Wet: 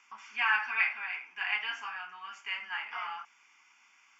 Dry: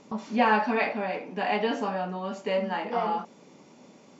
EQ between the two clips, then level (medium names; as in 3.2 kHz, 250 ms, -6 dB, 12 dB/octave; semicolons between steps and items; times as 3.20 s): resonant high-pass 1.8 kHz, resonance Q 9.8; treble shelf 4 kHz -8 dB; static phaser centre 2.7 kHz, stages 8; 0.0 dB